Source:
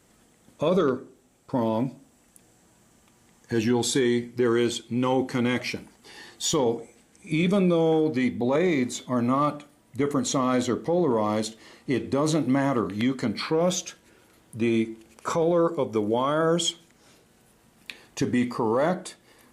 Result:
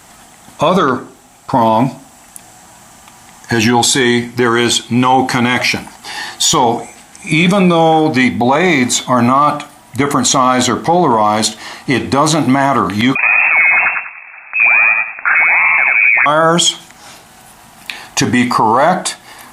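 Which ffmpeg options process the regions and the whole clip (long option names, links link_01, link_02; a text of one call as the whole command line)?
ffmpeg -i in.wav -filter_complex "[0:a]asettb=1/sr,asplit=3[link_01][link_02][link_03];[link_01]atrim=end=13.154[link_04];[link_02]atrim=start=13.15:end=16.26,asetpts=PTS-STARTPTS,afade=type=in:duration=0.004:curve=qsin,afade=type=out:start_time=3.106:duration=0.004:curve=qsin,acrusher=samples=23:mix=1:aa=0.000001:lfo=1:lforange=36.8:lforate=1.3,aecho=1:1:92|184|276|368:0.596|0.179|0.0536|0.0161,atrim=end_sample=137151,lowpass=frequency=2300:width_type=q:width=0.5098,lowpass=frequency=2300:width_type=q:width=0.6013,lowpass=frequency=2300:width_type=q:width=0.9,lowpass=frequency=2300:width_type=q:width=2.563,afreqshift=-2700[link_05];[link_03]atrim=start=16.256[link_06];[link_04][link_05]acrossfade=duration=0.004:curve1=hsin:curve2=qsin[link_07];[link_07][link_06]acrossfade=duration=0.004:curve1=qsin:curve2=hsin,lowshelf=frequency=610:width_type=q:width=3:gain=-6,alimiter=level_in=22dB:limit=-1dB:release=50:level=0:latency=1,volume=-1dB" out.wav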